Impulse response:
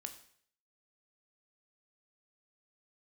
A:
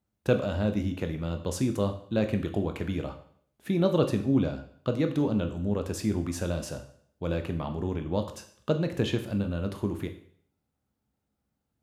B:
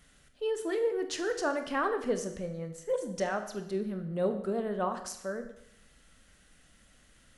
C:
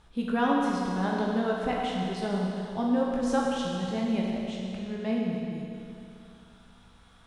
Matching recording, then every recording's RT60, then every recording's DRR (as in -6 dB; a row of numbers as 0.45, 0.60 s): A; 0.60, 0.75, 2.7 s; 6.5, 7.0, -3.0 dB